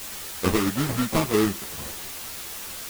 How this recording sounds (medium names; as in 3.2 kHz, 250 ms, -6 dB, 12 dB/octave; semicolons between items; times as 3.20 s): aliases and images of a low sample rate 1.6 kHz, jitter 20%; tremolo saw down 4.5 Hz, depth 55%; a quantiser's noise floor 6-bit, dither triangular; a shimmering, thickened sound